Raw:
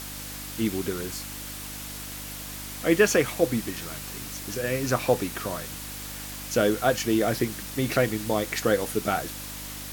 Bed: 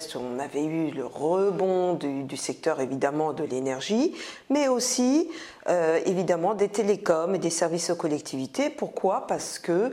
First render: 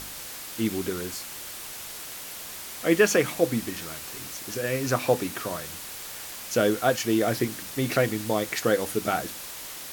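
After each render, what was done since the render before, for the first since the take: de-hum 50 Hz, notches 6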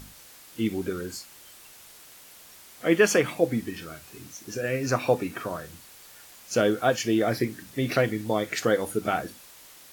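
noise print and reduce 11 dB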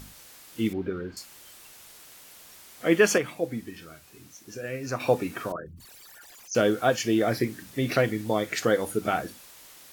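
0.73–1.17 air absorption 350 m; 3.18–5 gain -6 dB; 5.52–6.55 formant sharpening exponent 3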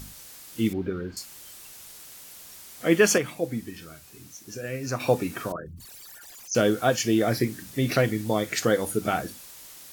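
tone controls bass +4 dB, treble +5 dB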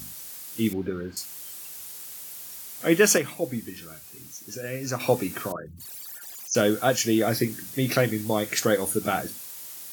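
HPF 89 Hz; high shelf 8400 Hz +8.5 dB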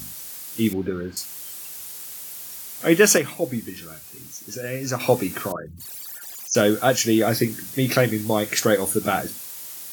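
gain +3.5 dB

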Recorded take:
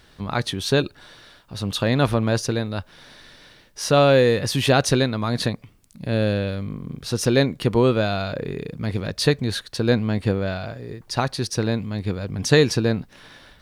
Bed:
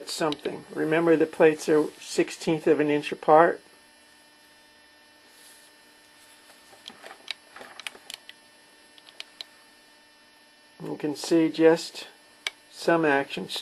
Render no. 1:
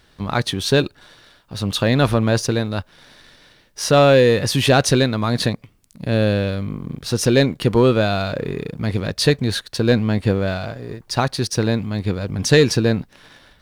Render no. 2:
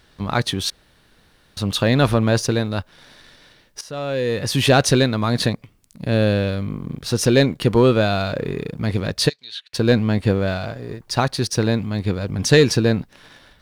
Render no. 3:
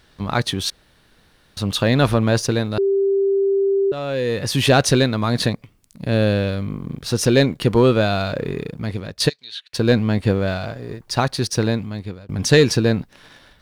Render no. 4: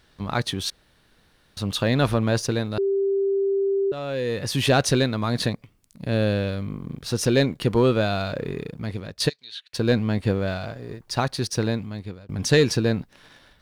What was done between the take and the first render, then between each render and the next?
sample leveller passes 1
0.7–1.57 room tone; 3.81–4.61 fade in quadratic, from -18 dB; 9.28–9.73 band-pass 5500 Hz -> 2300 Hz, Q 4.1
2.78–3.92 bleep 393 Hz -14.5 dBFS; 8.59–9.2 fade out, to -11.5 dB; 11.64–12.29 fade out, to -23 dB
gain -4.5 dB

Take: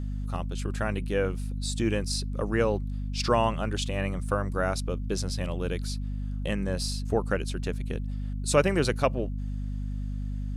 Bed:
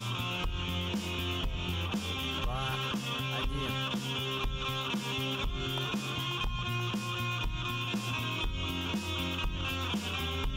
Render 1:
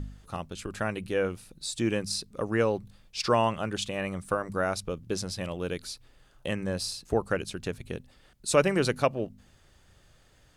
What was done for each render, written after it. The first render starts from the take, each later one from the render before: de-hum 50 Hz, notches 5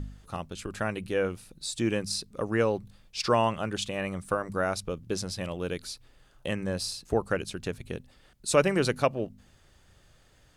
nothing audible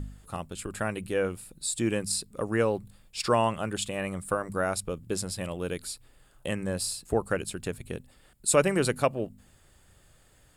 resonant high shelf 6200 Hz +6 dB, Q 1.5; notch 6100 Hz, Q 5.8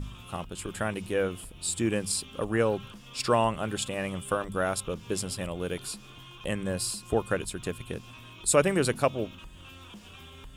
add bed -14 dB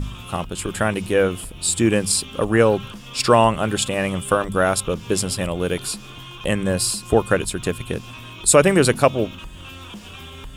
gain +10 dB; limiter -2 dBFS, peak gain reduction 2.5 dB

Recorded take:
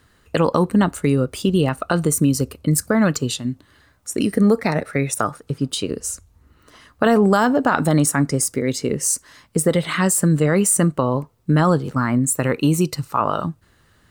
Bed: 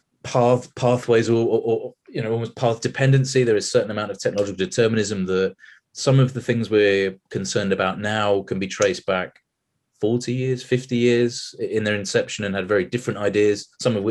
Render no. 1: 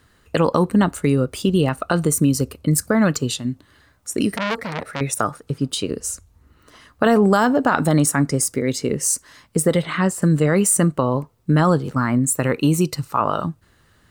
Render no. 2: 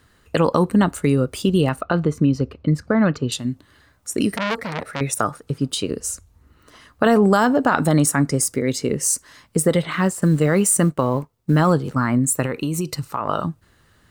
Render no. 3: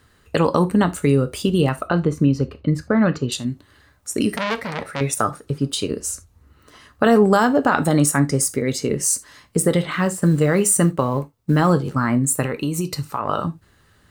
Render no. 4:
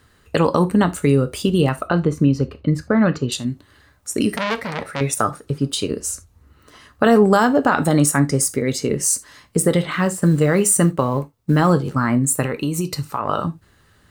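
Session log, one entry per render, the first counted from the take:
4.36–5.01 core saturation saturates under 2400 Hz; 9.82–10.22 LPF 2300 Hz 6 dB/oct
1.81–3.32 air absorption 230 m; 9.91–11.73 G.711 law mismatch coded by A; 12.45–13.29 compressor, threshold -19 dBFS
non-linear reverb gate 0.1 s falling, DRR 9.5 dB
gain +1 dB; limiter -2 dBFS, peak gain reduction 2 dB

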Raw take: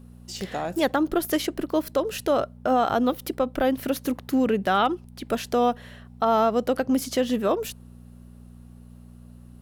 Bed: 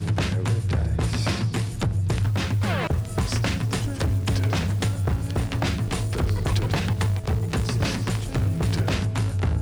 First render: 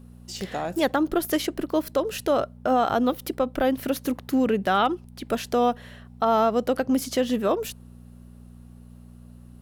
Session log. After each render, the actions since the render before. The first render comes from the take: nothing audible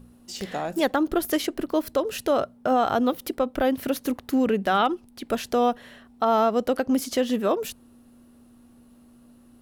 de-hum 60 Hz, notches 3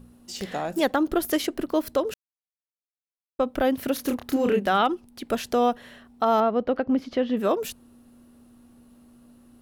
2.14–3.39 mute; 3.95–4.69 doubler 29 ms -3.5 dB; 6.4–7.37 air absorption 310 m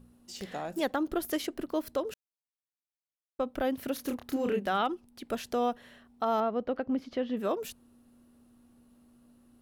gain -7.5 dB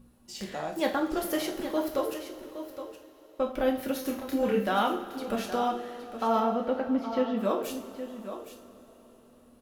echo 0.817 s -11 dB; two-slope reverb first 0.39 s, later 4.7 s, from -20 dB, DRR -0.5 dB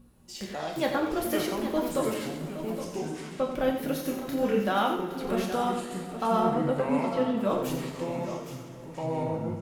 echo 90 ms -8.5 dB; echoes that change speed 0.182 s, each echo -6 st, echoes 2, each echo -6 dB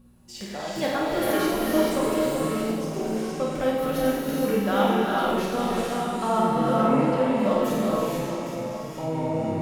flutter echo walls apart 8.6 m, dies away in 0.55 s; non-linear reverb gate 0.49 s rising, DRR -0.5 dB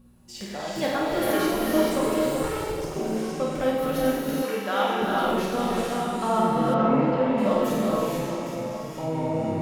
2.43–2.96 minimum comb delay 2.2 ms; 4.42–5.02 weighting filter A; 6.74–7.38 air absorption 140 m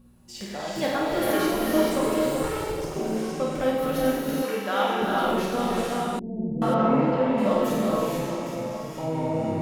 6.19–6.62 Gaussian blur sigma 23 samples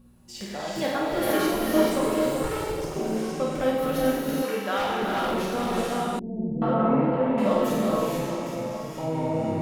0.83–2.51 three-band expander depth 40%; 4.77–5.74 overloaded stage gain 22.5 dB; 6.6–7.38 air absorption 340 m

